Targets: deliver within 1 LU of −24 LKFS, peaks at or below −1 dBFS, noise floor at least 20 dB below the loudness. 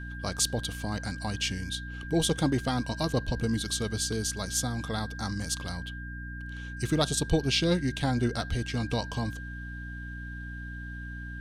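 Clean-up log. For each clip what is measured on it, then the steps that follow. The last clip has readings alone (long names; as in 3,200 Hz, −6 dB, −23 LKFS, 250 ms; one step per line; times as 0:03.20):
mains hum 60 Hz; hum harmonics up to 300 Hz; level of the hum −37 dBFS; interfering tone 1,600 Hz; level of the tone −42 dBFS; integrated loudness −31.0 LKFS; sample peak −11.5 dBFS; target loudness −24.0 LKFS
→ mains-hum notches 60/120/180/240/300 Hz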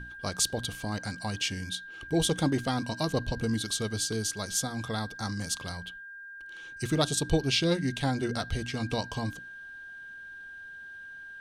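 mains hum none found; interfering tone 1,600 Hz; level of the tone −42 dBFS
→ notch filter 1,600 Hz, Q 30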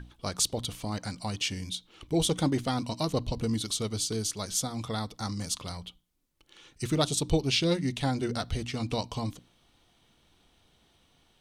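interfering tone none found; integrated loudness −30.5 LKFS; sample peak −11.5 dBFS; target loudness −24.0 LKFS
→ level +6.5 dB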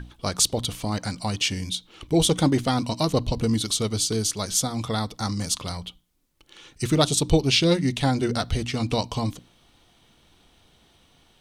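integrated loudness −24.0 LKFS; sample peak −5.0 dBFS; background noise floor −60 dBFS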